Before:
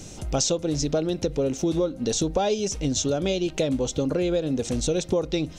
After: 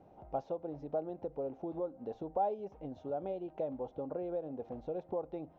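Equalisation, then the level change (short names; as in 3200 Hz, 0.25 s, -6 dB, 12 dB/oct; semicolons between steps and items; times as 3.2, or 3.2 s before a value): band-pass 790 Hz, Q 3.4; air absorption 200 m; tilt -3 dB/oct; -4.5 dB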